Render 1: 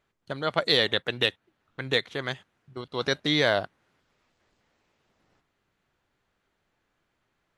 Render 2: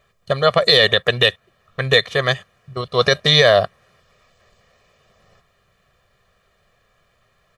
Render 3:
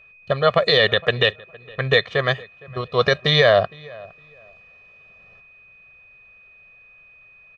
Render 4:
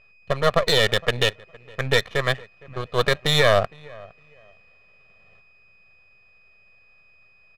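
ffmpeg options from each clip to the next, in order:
ffmpeg -i in.wav -af "aecho=1:1:1.7:0.91,alimiter=level_in=12dB:limit=-1dB:release=50:level=0:latency=1,volume=-1dB" out.wav
ffmpeg -i in.wav -filter_complex "[0:a]lowpass=3400,aeval=exprs='val(0)+0.00501*sin(2*PI*2500*n/s)':channel_layout=same,asplit=2[link_01][link_02];[link_02]adelay=462,lowpass=frequency=2100:poles=1,volume=-22.5dB,asplit=2[link_03][link_04];[link_04]adelay=462,lowpass=frequency=2100:poles=1,volume=0.23[link_05];[link_01][link_03][link_05]amix=inputs=3:normalize=0,volume=-1.5dB" out.wav
ffmpeg -i in.wav -af "aeval=exprs='if(lt(val(0),0),0.251*val(0),val(0))':channel_layout=same,adynamicsmooth=sensitivity=5.5:basefreq=3100" out.wav

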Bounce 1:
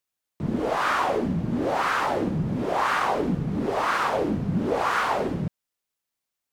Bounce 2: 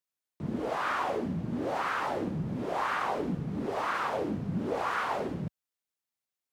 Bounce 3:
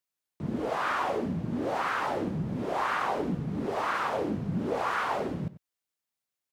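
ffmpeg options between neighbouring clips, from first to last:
ffmpeg -i in.wav -filter_complex "[0:a]acrossover=split=3400[link_01][link_02];[link_02]alimiter=level_in=13dB:limit=-24dB:level=0:latency=1,volume=-13dB[link_03];[link_01][link_03]amix=inputs=2:normalize=0,highpass=57,volume=-7dB" out.wav
ffmpeg -i in.wav -filter_complex "[0:a]asplit=2[link_01][link_02];[link_02]adelay=93.29,volume=-16dB,highshelf=frequency=4000:gain=-2.1[link_03];[link_01][link_03]amix=inputs=2:normalize=0,volume=1.5dB" out.wav

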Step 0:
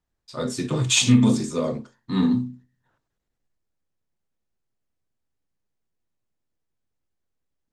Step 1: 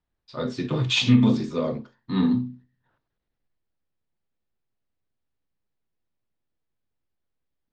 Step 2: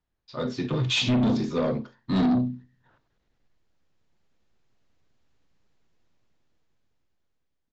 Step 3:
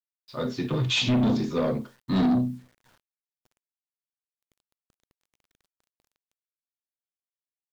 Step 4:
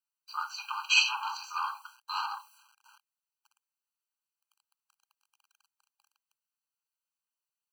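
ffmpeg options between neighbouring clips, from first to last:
ffmpeg -i in.wav -af "lowpass=frequency=4600:width=0.5412,lowpass=frequency=4600:width=1.3066,volume=-1dB" out.wav
ffmpeg -i in.wav -af "dynaudnorm=framelen=470:gausssize=7:maxgain=14dB,aresample=16000,asoftclip=type=tanh:threshold=-18.5dB,aresample=44100" out.wav
ffmpeg -i in.wav -af "acrusher=bits=9:mix=0:aa=0.000001" out.wav
ffmpeg -i in.wav -af "afftfilt=real='re*eq(mod(floor(b*sr/1024/800),2),1)':imag='im*eq(mod(floor(b*sr/1024/800),2),1)':win_size=1024:overlap=0.75,volume=5.5dB" out.wav

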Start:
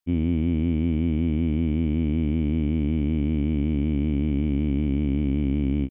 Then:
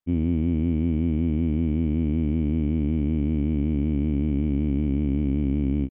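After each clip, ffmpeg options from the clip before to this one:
ffmpeg -i in.wav -af "highshelf=frequency=2700:gain=-11.5" out.wav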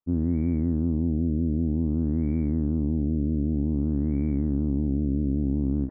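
ffmpeg -i in.wav -af "areverse,acompressor=mode=upward:threshold=-31dB:ratio=2.5,areverse,afftfilt=real='re*lt(b*sr/1024,650*pow(2400/650,0.5+0.5*sin(2*PI*0.53*pts/sr)))':imag='im*lt(b*sr/1024,650*pow(2400/650,0.5+0.5*sin(2*PI*0.53*pts/sr)))':win_size=1024:overlap=0.75,volume=-1.5dB" out.wav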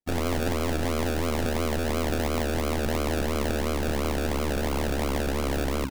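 ffmpeg -i in.wav -af "aresample=16000,aeval=exprs='(mod(9.44*val(0)+1,2)-1)/9.44':channel_layout=same,aresample=44100,acrusher=samples=34:mix=1:aa=0.000001:lfo=1:lforange=20.4:lforate=2.9" out.wav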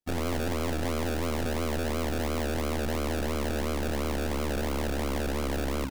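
ffmpeg -i in.wav -af "asoftclip=type=tanh:threshold=-25dB" out.wav

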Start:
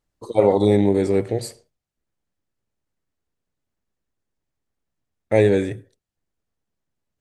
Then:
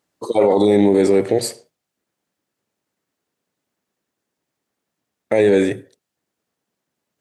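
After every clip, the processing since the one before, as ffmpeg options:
ffmpeg -i in.wav -af "highpass=200,alimiter=limit=-14.5dB:level=0:latency=1:release=32,volume=9dB" out.wav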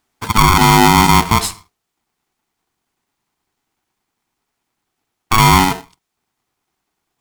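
ffmpeg -i in.wav -af "aeval=exprs='val(0)*sgn(sin(2*PI*560*n/s))':channel_layout=same,volume=4dB" out.wav

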